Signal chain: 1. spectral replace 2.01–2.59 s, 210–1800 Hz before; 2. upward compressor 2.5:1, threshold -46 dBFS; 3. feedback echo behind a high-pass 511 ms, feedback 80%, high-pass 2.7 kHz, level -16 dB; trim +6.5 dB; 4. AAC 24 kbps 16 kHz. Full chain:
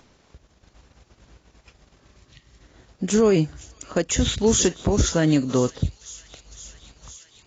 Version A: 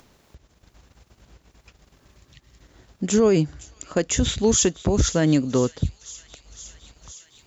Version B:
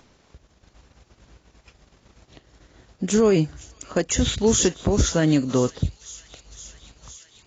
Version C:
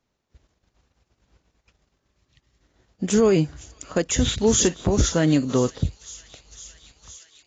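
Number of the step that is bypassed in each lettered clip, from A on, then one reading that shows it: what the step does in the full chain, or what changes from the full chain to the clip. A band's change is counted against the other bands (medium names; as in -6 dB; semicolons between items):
4, momentary loudness spread change +3 LU; 1, momentary loudness spread change +3 LU; 2, momentary loudness spread change -5 LU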